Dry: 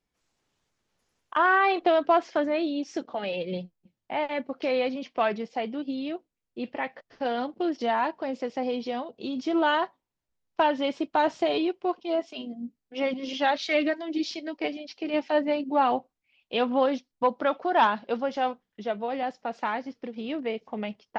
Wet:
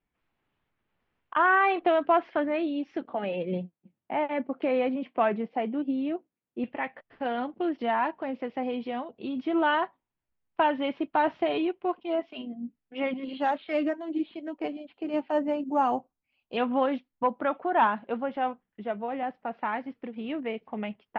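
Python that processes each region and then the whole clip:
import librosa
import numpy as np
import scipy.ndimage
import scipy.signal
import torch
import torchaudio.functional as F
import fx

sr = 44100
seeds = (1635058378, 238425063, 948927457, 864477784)

y = fx.chain(x, sr, fx.highpass(hz=150.0, slope=12),
    fx.tilt_shelf(db=4.5, hz=1200.0), at=(3.1, 6.64))
y = fx.chain(y, sr, fx.peak_eq(hz=2100.0, db=-8.5, octaves=0.88),
    fx.resample_bad(factor=6, down='filtered', up='hold'), at=(13.24, 16.57))
y = fx.chain(y, sr, fx.high_shelf(hz=2800.0, db=-6.5),
    fx.resample_linear(factor=2), at=(17.1, 19.73))
y = scipy.signal.sosfilt(scipy.signal.butter(4, 2900.0, 'lowpass', fs=sr, output='sos'), y)
y = fx.peak_eq(y, sr, hz=500.0, db=-3.5, octaves=0.77)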